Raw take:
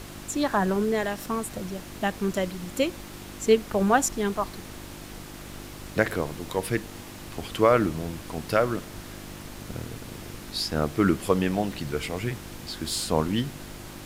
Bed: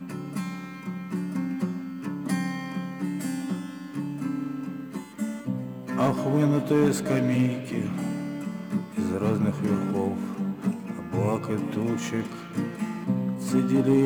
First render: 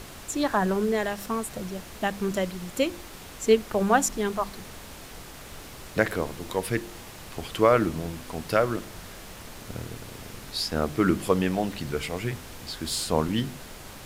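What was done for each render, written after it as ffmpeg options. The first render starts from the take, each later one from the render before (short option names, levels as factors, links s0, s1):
-af "bandreject=f=50:t=h:w=4,bandreject=f=100:t=h:w=4,bandreject=f=150:t=h:w=4,bandreject=f=200:t=h:w=4,bandreject=f=250:t=h:w=4,bandreject=f=300:t=h:w=4,bandreject=f=350:t=h:w=4"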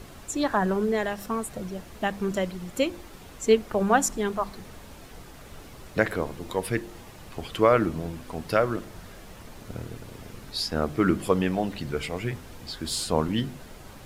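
-af "afftdn=nr=7:nf=-44"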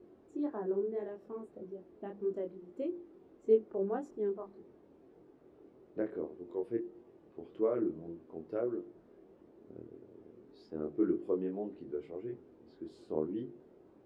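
-af "flanger=delay=22.5:depth=3.5:speed=1.7,bandpass=f=360:t=q:w=3.9:csg=0"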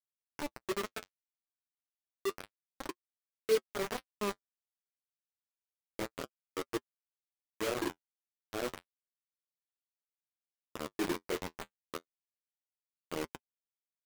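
-af "acrusher=bits=4:mix=0:aa=0.000001,flanger=delay=6.2:depth=6.2:regen=-37:speed=0.3:shape=sinusoidal"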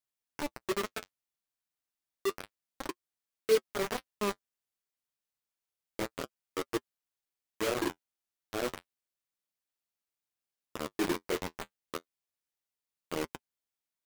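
-af "volume=1.41"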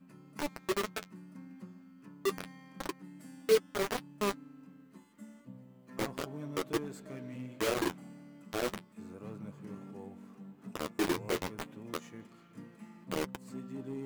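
-filter_complex "[1:a]volume=0.0944[s0];[0:a][s0]amix=inputs=2:normalize=0"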